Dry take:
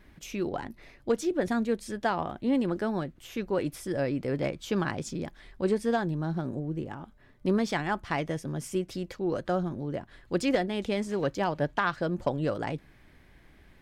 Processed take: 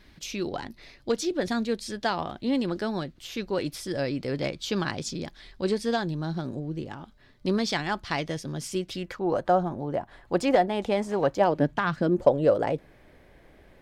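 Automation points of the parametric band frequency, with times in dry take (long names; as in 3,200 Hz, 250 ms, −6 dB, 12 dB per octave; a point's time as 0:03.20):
parametric band +11.5 dB 1.1 octaves
0:08.85 4,400 Hz
0:09.27 790 Hz
0:11.37 790 Hz
0:11.82 110 Hz
0:12.26 540 Hz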